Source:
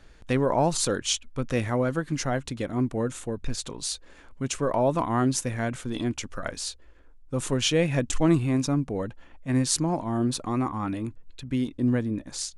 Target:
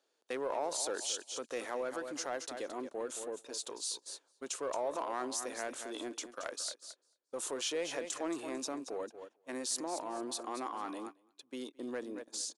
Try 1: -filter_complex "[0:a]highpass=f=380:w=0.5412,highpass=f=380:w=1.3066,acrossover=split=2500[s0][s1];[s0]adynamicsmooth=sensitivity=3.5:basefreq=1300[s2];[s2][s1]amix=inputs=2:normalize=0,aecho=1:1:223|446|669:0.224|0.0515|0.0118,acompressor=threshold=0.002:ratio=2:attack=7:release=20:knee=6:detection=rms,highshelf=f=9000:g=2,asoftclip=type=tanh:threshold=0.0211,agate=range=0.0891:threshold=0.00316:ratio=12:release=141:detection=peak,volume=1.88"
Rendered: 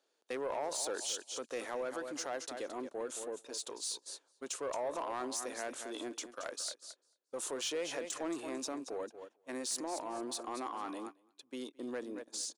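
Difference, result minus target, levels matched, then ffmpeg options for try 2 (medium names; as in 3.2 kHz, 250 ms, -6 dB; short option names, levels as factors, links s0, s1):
saturation: distortion +17 dB
-filter_complex "[0:a]highpass=f=380:w=0.5412,highpass=f=380:w=1.3066,acrossover=split=2500[s0][s1];[s0]adynamicsmooth=sensitivity=3.5:basefreq=1300[s2];[s2][s1]amix=inputs=2:normalize=0,aecho=1:1:223|446|669:0.224|0.0515|0.0118,acompressor=threshold=0.002:ratio=2:attack=7:release=20:knee=6:detection=rms,highshelf=f=9000:g=2,asoftclip=type=tanh:threshold=0.0668,agate=range=0.0891:threshold=0.00316:ratio=12:release=141:detection=peak,volume=1.88"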